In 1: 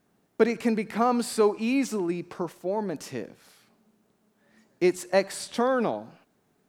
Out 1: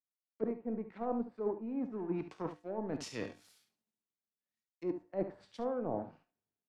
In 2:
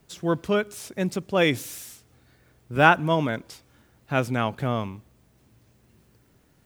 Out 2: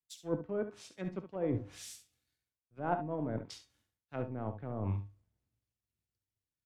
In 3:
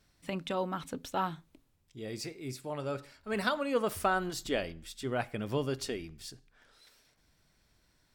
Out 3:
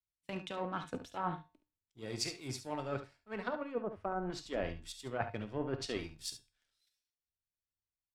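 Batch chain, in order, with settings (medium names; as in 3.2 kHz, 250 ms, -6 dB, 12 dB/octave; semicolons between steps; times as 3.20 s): power-law waveshaper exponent 1.4; low-pass that closes with the level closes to 690 Hz, closed at -28 dBFS; reverse; compression 8:1, threshold -43 dBFS; reverse; feedback comb 100 Hz, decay 0.39 s, harmonics odd, mix 60%; on a send: early reflections 51 ms -16 dB, 71 ms -10.5 dB; on the sum: three bands expanded up and down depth 70%; trim +15.5 dB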